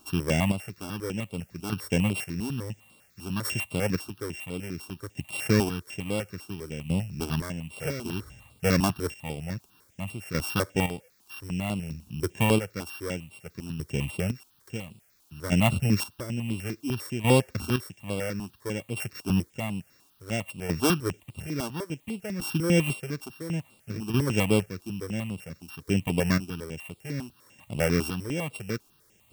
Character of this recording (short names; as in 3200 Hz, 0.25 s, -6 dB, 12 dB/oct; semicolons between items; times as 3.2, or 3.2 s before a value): a buzz of ramps at a fixed pitch in blocks of 16 samples; chopped level 0.58 Hz, depth 65%, duty 30%; a quantiser's noise floor 12-bit, dither triangular; notches that jump at a steady rate 10 Hz 520–6000 Hz